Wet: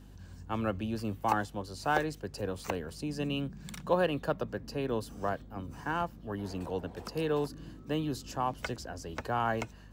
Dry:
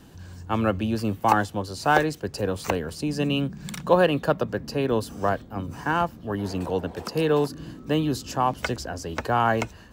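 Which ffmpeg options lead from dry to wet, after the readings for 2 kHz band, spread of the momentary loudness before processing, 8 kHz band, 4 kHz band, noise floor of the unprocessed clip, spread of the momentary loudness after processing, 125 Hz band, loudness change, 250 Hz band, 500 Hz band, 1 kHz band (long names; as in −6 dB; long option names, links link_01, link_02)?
−9.0 dB, 9 LU, −9.0 dB, −9.0 dB, −47 dBFS, 9 LU, −9.0 dB, −9.0 dB, −9.0 dB, −9.0 dB, −9.0 dB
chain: -af "aeval=exprs='val(0)+0.00794*(sin(2*PI*50*n/s)+sin(2*PI*2*50*n/s)/2+sin(2*PI*3*50*n/s)/3+sin(2*PI*4*50*n/s)/4+sin(2*PI*5*50*n/s)/5)':channel_layout=same,volume=-9dB"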